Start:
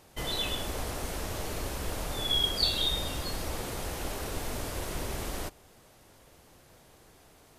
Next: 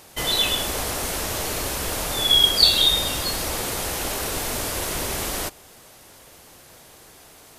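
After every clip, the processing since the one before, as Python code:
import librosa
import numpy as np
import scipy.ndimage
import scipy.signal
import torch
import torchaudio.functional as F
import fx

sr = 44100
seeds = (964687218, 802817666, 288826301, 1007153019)

y = fx.tilt_eq(x, sr, slope=1.5)
y = y * librosa.db_to_amplitude(9.0)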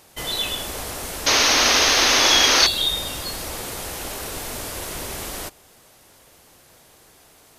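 y = fx.spec_paint(x, sr, seeds[0], shape='noise', start_s=1.26, length_s=1.41, low_hz=230.0, high_hz=6700.0, level_db=-13.0)
y = y * librosa.db_to_amplitude(-4.0)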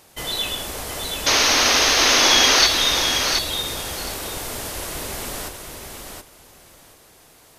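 y = fx.echo_feedback(x, sr, ms=723, feedback_pct=17, wet_db=-5.5)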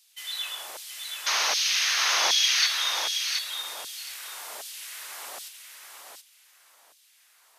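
y = fx.filter_lfo_highpass(x, sr, shape='saw_down', hz=1.3, low_hz=640.0, high_hz=3900.0, q=1.3)
y = y * librosa.db_to_amplitude(-8.5)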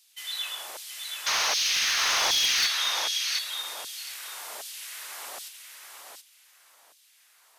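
y = np.clip(x, -10.0 ** (-19.5 / 20.0), 10.0 ** (-19.5 / 20.0))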